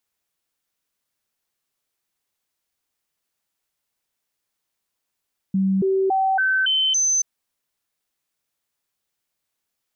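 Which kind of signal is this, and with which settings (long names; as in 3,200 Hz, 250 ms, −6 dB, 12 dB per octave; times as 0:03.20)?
stepped sweep 192 Hz up, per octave 1, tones 6, 0.28 s, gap 0.00 s −16.5 dBFS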